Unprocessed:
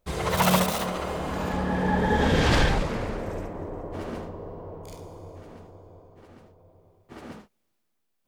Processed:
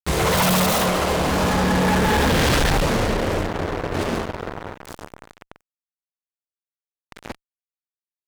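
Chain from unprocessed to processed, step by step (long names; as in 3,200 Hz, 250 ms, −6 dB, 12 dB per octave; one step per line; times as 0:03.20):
harmonic generator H 3 −13 dB, 6 −35 dB, 8 −28 dB, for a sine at −7 dBFS
fuzz pedal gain 46 dB, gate −45 dBFS
level −3 dB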